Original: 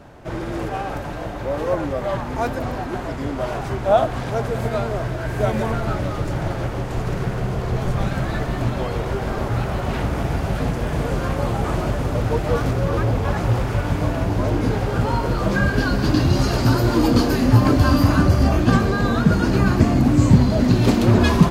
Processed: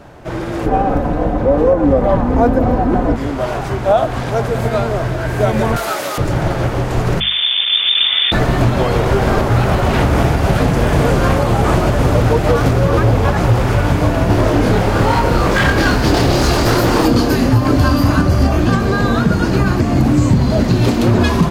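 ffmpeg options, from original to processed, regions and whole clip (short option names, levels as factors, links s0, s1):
-filter_complex "[0:a]asettb=1/sr,asplit=3[s0][s1][s2];[s0]atrim=end=0.664[s3];[s1]atrim=start=0.66:end=3.16,asetpts=PTS-STARTPTS,afade=t=in:d=0.004:c=qsin,afade=t=out:st=2.496:d=0.004:c=qsin,tiltshelf=f=1300:g=9.5,aecho=1:1:4:0.45,atrim=end_sample=110250[s4];[s2]atrim=start=3.156[s5];[s3][s4]acrossfade=d=0.004:c1=hsin:c2=qsin[s6];[s6][s5]acrossfade=d=0.004:c1=qsin:c2=hsin,asettb=1/sr,asplit=3[s7][s8][s9];[s7]atrim=end=5.764[s10];[s8]atrim=start=5.76:end=6.18,asetpts=PTS-STARTPTS,afade=t=in:d=0.004:c=qsin,afade=t=out:st=0.416:d=0.004:c=qsin,highpass=490,aemphasis=mode=production:type=75kf[s11];[s9]atrim=start=6.176[s12];[s10][s11]acrossfade=d=0.004:c1=hsin:c2=qsin[s13];[s13][s12]acrossfade=d=0.004:c1=qsin:c2=hsin,asettb=1/sr,asplit=3[s14][s15][s16];[s14]atrim=end=7.204[s17];[s15]atrim=start=7.2:end=8.32,asetpts=PTS-STARTPTS,afade=t=in:d=0.004:c=qsin,afade=t=out:st=1.116:d=0.004:c=qsin,aeval=exprs='clip(val(0),-1,0.0316)':c=same,lowpass=f=3100:t=q:w=0.5098,lowpass=f=3100:t=q:w=0.6013,lowpass=f=3100:t=q:w=0.9,lowpass=f=3100:t=q:w=2.563,afreqshift=-3600[s18];[s16]atrim=start=8.316[s19];[s17][s18]acrossfade=d=0.004:c1=hsin:c2=qsin[s20];[s20][s19]acrossfade=d=0.004:c1=qsin:c2=hsin,asettb=1/sr,asplit=3[s21][s22][s23];[s21]atrim=end=14.264[s24];[s22]atrim=start=14.26:end=17.05,asetpts=PTS-STARTPTS,afade=t=in:d=0.004:c=qsin,afade=t=out:st=2.786:d=0.004:c=qsin,aeval=exprs='0.168*(abs(mod(val(0)/0.168+3,4)-2)-1)':c=same,asplit=2[s25][s26];[s26]adelay=28,volume=0.75[s27];[s25][s27]amix=inputs=2:normalize=0,atrim=end_sample=123039[s28];[s23]atrim=start=17.046[s29];[s24][s28]acrossfade=d=0.004:c1=hsin:c2=qsin[s30];[s30][s29]acrossfade=d=0.004:c1=qsin:c2=hsin,bandreject=f=50:t=h:w=6,bandreject=f=100:t=h:w=6,bandreject=f=150:t=h:w=6,bandreject=f=200:t=h:w=6,bandreject=f=250:t=h:w=6,dynaudnorm=f=430:g=21:m=3.76,alimiter=limit=0.376:level=0:latency=1:release=171,volume=1.88"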